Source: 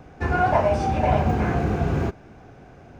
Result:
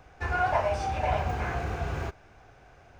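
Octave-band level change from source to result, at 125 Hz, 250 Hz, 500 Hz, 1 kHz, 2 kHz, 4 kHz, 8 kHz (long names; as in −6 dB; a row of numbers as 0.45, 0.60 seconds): −9.0 dB, −15.0 dB, −7.5 dB, −5.5 dB, −3.0 dB, −2.5 dB, can't be measured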